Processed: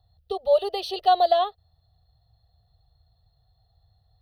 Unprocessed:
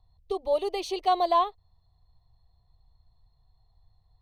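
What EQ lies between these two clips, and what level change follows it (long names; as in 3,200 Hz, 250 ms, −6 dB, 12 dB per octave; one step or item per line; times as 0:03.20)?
high-pass filter 68 Hz 12 dB per octave
phaser with its sweep stopped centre 1,500 Hz, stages 8
+6.5 dB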